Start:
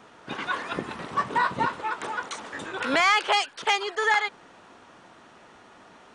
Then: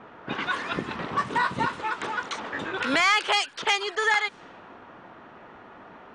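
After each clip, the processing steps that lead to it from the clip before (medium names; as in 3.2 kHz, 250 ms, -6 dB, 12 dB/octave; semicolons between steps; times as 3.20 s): level-controlled noise filter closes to 1.9 kHz, open at -22.5 dBFS; dynamic bell 670 Hz, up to -5 dB, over -37 dBFS, Q 0.79; in parallel at -2 dB: compression, threshold -33 dBFS, peak gain reduction 14 dB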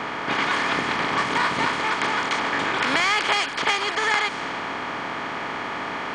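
spectral levelling over time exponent 0.4; trim -3.5 dB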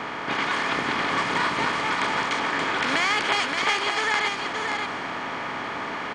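delay 576 ms -5 dB; trim -2.5 dB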